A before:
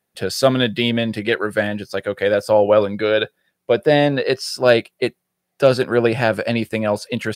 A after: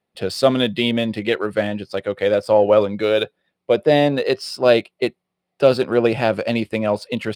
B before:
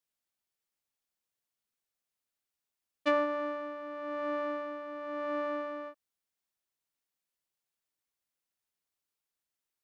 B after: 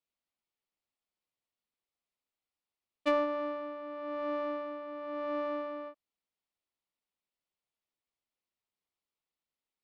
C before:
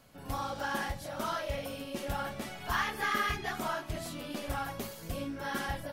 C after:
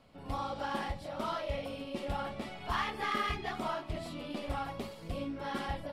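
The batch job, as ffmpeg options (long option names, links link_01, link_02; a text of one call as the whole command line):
ffmpeg -i in.wav -af "equalizer=frequency=125:width_type=o:width=0.33:gain=-5,equalizer=frequency=1600:width_type=o:width=0.33:gain=-8,equalizer=frequency=6300:width_type=o:width=0.33:gain=-8,adynamicsmooth=sensitivity=7:basefreq=5700" out.wav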